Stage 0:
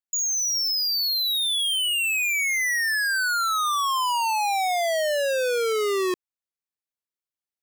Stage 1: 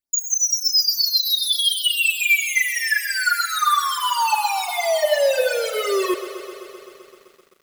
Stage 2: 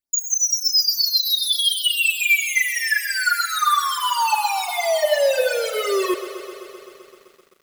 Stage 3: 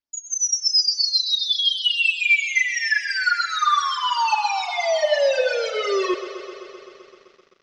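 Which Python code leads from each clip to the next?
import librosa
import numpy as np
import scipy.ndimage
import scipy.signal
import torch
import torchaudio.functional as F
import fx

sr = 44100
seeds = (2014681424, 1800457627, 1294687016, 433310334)

y1 = x + 0.59 * np.pad(x, (int(3.4 * sr / 1000.0), 0))[:len(x)]
y1 = fx.phaser_stages(y1, sr, stages=8, low_hz=200.0, high_hz=3000.0, hz=2.9, feedback_pct=45)
y1 = fx.echo_crushed(y1, sr, ms=129, feedback_pct=80, bits=9, wet_db=-12.5)
y1 = y1 * librosa.db_to_amplitude(4.5)
y2 = y1
y3 = scipy.signal.sosfilt(scipy.signal.cheby1(4, 1.0, 5800.0, 'lowpass', fs=sr, output='sos'), y2)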